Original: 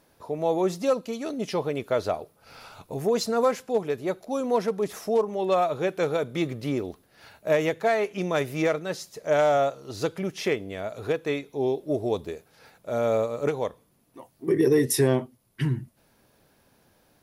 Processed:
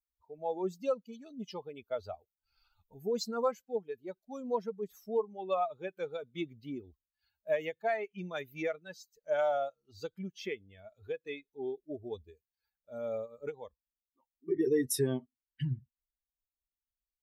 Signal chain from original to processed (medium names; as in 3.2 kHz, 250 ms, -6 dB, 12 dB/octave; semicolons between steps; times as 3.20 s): expander on every frequency bin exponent 2; trim -5.5 dB